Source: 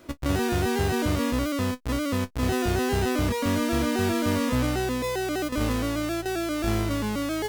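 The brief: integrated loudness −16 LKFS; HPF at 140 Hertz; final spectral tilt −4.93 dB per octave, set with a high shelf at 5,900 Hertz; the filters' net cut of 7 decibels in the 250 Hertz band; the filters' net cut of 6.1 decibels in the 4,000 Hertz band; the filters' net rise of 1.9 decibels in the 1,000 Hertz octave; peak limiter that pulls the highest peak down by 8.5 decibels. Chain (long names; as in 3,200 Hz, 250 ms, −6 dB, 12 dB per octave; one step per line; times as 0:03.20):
high-pass filter 140 Hz
parametric band 250 Hz −8.5 dB
parametric band 1,000 Hz +3.5 dB
parametric band 4,000 Hz −6 dB
high-shelf EQ 5,900 Hz −6.5 dB
level +17.5 dB
brickwall limiter −6.5 dBFS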